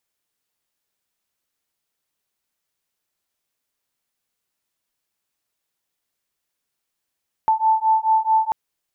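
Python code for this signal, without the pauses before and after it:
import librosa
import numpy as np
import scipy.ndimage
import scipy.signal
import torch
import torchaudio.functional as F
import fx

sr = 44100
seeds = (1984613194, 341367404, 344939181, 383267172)

y = fx.two_tone_beats(sr, length_s=1.04, hz=879.0, beat_hz=4.6, level_db=-18.0)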